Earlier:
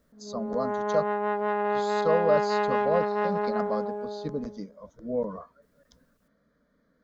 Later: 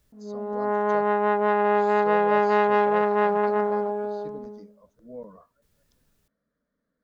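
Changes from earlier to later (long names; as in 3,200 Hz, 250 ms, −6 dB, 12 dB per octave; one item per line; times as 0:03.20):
speech −11.0 dB
background +5.5 dB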